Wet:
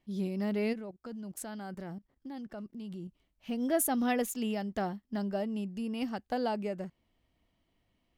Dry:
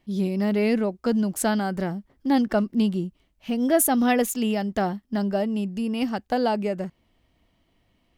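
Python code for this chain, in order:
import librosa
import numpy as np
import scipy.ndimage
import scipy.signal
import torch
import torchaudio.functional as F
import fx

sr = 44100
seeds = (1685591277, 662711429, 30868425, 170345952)

y = fx.level_steps(x, sr, step_db=16, at=(0.72, 3.07), fade=0.02)
y = F.gain(torch.from_numpy(y), -9.0).numpy()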